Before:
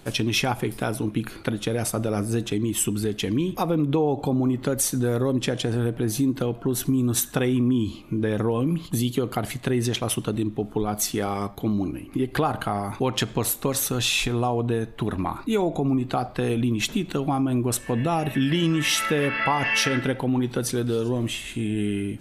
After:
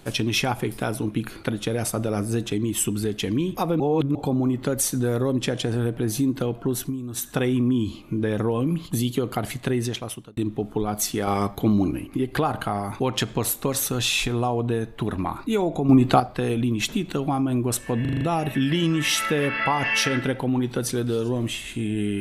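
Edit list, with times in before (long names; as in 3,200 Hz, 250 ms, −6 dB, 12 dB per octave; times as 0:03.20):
0:03.80–0:04.15: reverse
0:06.71–0:07.39: duck −10.5 dB, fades 0.28 s
0:09.71–0:10.37: fade out
0:11.27–0:12.07: clip gain +4.5 dB
0:15.89–0:16.20: clip gain +8 dB
0:18.01: stutter 0.04 s, 6 plays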